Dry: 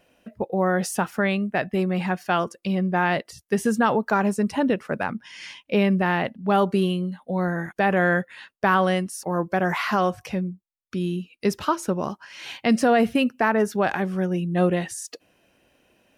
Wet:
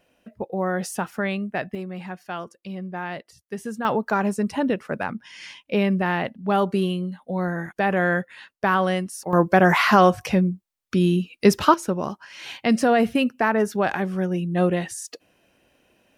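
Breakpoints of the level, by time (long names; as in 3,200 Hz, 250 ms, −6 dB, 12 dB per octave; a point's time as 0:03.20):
−3 dB
from 0:01.75 −9.5 dB
from 0:03.85 −1 dB
from 0:09.33 +7 dB
from 0:11.74 0 dB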